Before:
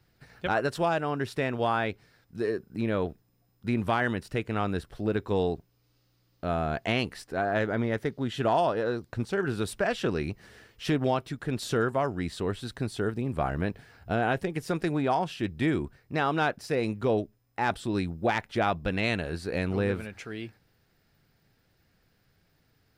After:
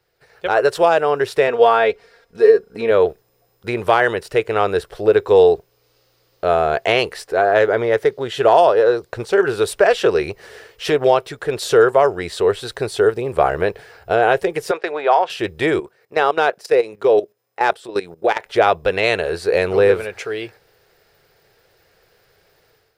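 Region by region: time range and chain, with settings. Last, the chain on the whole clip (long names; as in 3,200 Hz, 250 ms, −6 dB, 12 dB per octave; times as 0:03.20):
0:01.47–0:02.91: high-shelf EQ 8,500 Hz −9.5 dB + comb filter 4.3 ms, depth 64%
0:14.71–0:15.30: band-pass filter 540–3,600 Hz + downward expander −46 dBFS
0:15.80–0:18.46: high-pass filter 170 Hz + output level in coarse steps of 14 dB
whole clip: low shelf with overshoot 330 Hz −9 dB, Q 3; automatic gain control gain up to 11.5 dB; level +1 dB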